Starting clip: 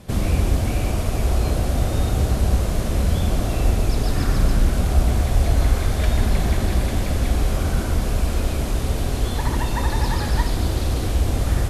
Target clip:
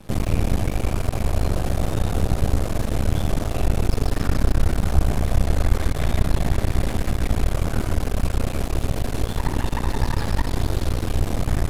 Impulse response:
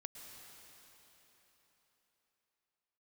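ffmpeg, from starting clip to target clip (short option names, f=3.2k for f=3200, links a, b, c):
-filter_complex "[0:a]acrossover=split=450[a][b];[b]acompressor=threshold=-26dB:ratio=6[c];[a][c]amix=inputs=2:normalize=0,aeval=exprs='max(val(0),0)':c=same,asplit=2[d][e];[1:a]atrim=start_sample=2205,lowpass=3.5k[f];[e][f]afir=irnorm=-1:irlink=0,volume=-4.5dB[g];[d][g]amix=inputs=2:normalize=0"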